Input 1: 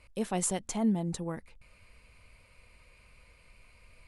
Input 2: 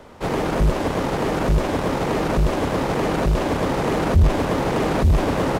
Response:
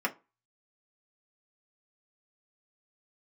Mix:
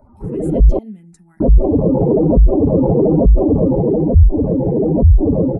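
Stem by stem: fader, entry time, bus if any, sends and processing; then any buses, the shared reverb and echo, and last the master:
−18.5 dB, 0.00 s, send −8 dB, parametric band 1,100 Hz −14.5 dB 0.45 octaves
+1.5 dB, 0.00 s, muted 0:00.79–0:01.40, no send, expanding power law on the bin magnitudes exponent 3.2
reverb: on, RT60 0.30 s, pre-delay 3 ms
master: automatic gain control gain up to 11.5 dB; phaser swept by the level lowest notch 470 Hz, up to 1,600 Hz, full sweep at −9.5 dBFS

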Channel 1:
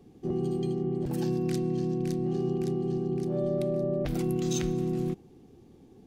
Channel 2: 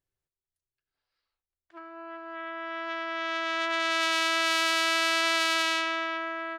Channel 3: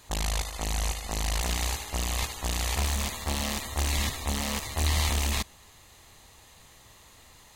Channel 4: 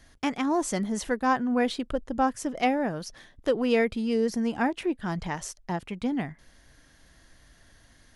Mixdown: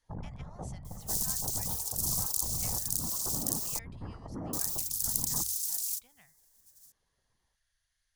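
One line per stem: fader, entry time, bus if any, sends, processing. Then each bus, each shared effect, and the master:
+2.5 dB, 0.85 s, muted 0:03.79–0:04.53, no bus, no send, compressing power law on the bin magnitudes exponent 0.16; reverb reduction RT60 1.5 s; inverse Chebyshev high-pass filter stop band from 1,000 Hz, stop band 80 dB
muted
+1.5 dB, 0.00 s, bus A, no send, spectral dynamics exaggerated over time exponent 2; Bessel low-pass filter 770 Hz, order 8; random phases in short frames
−18.0 dB, 0.00 s, no bus, no send, guitar amp tone stack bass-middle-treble 10-0-10
bus A: 0.0 dB, compressor whose output falls as the input rises −37 dBFS, ratio −0.5; brickwall limiter −31 dBFS, peak gain reduction 8.5 dB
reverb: not used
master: hum removal 45.66 Hz, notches 2

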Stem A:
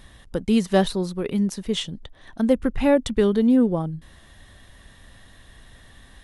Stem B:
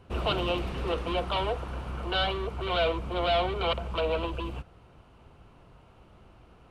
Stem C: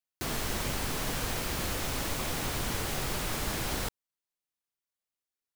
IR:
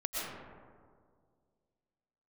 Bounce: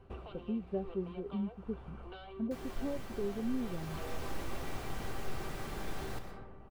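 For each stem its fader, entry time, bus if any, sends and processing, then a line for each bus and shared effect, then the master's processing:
−5.0 dB, 0.00 s, no send, downward compressor, threshold −20 dBFS, peak gain reduction 8 dB; moving average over 15 samples; every bin expanded away from the loudest bin 1.5 to 1
+3.0 dB, 0.00 s, no send, downward compressor 6 to 1, threshold −33 dBFS, peak gain reduction 11 dB; automatic ducking −8 dB, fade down 0.25 s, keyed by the first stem
−5.5 dB, 2.30 s, send −6 dB, no processing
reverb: on, RT60 2.0 s, pre-delay 80 ms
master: high-shelf EQ 2,700 Hz −11 dB; speech leveller within 3 dB 0.5 s; tuned comb filter 390 Hz, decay 0.16 s, harmonics all, mix 70%

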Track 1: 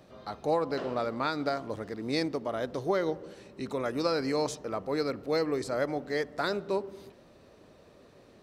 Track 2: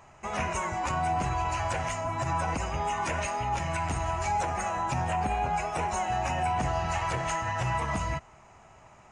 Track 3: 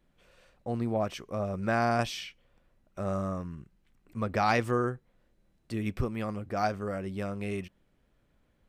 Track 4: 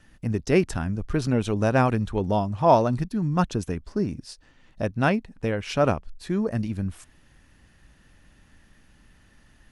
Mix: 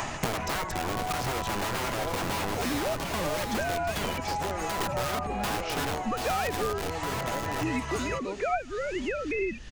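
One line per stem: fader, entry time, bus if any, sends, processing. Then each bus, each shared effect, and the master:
−12.5 dB, 1.55 s, no send, echo send −16 dB, bass and treble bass +4 dB, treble −13 dB
+0.5 dB, 0.00 s, no send, no echo send, slew-rate limiting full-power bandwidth 54 Hz; automatic ducking −8 dB, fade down 0.20 s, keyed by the fourth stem
−1.0 dB, 1.90 s, no send, no echo send, three sine waves on the formant tracks
−3.5 dB, 0.00 s, no send, echo send −7 dB, Butterworth low-pass 7,700 Hz 36 dB per octave; brickwall limiter −16 dBFS, peak gain reduction 10.5 dB; wrap-around overflow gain 25 dB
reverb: not used
echo: single-tap delay 735 ms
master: multiband upward and downward compressor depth 100%

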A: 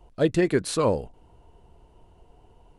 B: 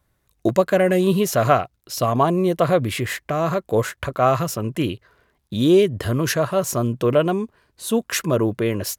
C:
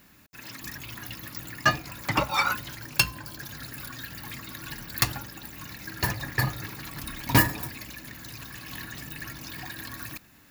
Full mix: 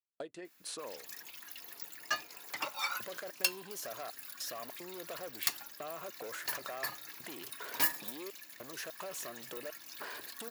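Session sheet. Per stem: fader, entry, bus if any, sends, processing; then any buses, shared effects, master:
−1.5 dB, 0.00 s, bus A, no send, no processing
−3.5 dB, 2.50 s, bus A, no send, downward compressor, threshold −24 dBFS, peak gain reduction 13 dB; soft clipping −25.5 dBFS, distortion −12 dB; level that may fall only so fast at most 31 dB per second
−15.0 dB, 0.45 s, no bus, no send, high-shelf EQ 2,500 Hz +9.5 dB
bus A: 0.0 dB, gate pattern "..xxx.xxxxxxx." 150 BPM −60 dB; downward compressor 16 to 1, threshold −39 dBFS, peak gain reduction 22 dB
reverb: not used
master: high-pass filter 420 Hz 12 dB per octave

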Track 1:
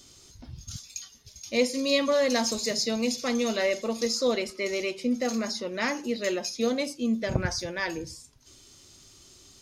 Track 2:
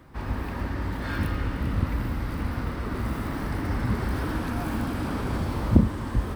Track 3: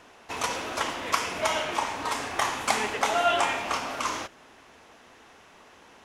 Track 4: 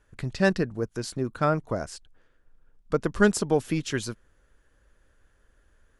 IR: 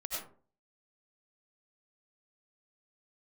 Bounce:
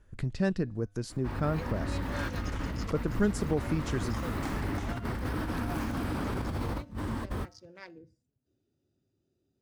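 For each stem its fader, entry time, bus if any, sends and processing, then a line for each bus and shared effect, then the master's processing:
−11.5 dB, 0.00 s, bus A, no send, adaptive Wiener filter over 41 samples; high-pass filter 100 Hz
+3.0 dB, 1.10 s, bus A, no send, compressor whose output falls as the input rises −28 dBFS, ratio −0.5
−19.5 dB, 1.75 s, no bus, no send, gate pattern "xxxxx...x" 65 BPM −12 dB
−1.0 dB, 0.00 s, bus A, no send, low-shelf EQ 370 Hz +10.5 dB
bus A: 0.0 dB, tuned comb filter 100 Hz, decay 0.47 s, harmonics odd, mix 30%; downward compressor 1.5 to 1, threshold −38 dBFS, peak gain reduction 9.5 dB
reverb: not used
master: no processing

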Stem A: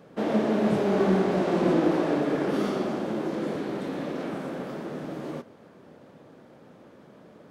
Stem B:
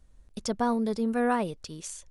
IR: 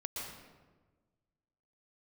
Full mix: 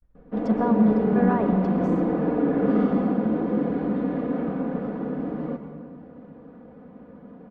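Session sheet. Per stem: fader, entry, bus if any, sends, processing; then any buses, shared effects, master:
−4.5 dB, 0.15 s, send −3.5 dB, low-shelf EQ 250 Hz +10.5 dB; comb filter 4.1 ms, depth 75%; automatic ducking −10 dB, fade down 0.25 s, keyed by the second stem
−1.5 dB, 0.00 s, send −6 dB, downward expander −50 dBFS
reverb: on, RT60 1.3 s, pre-delay 111 ms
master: low-pass filter 1,600 Hz 12 dB per octave

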